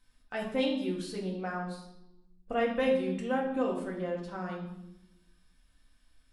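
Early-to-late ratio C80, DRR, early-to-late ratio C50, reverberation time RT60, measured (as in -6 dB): 8.0 dB, -3.5 dB, 5.5 dB, not exponential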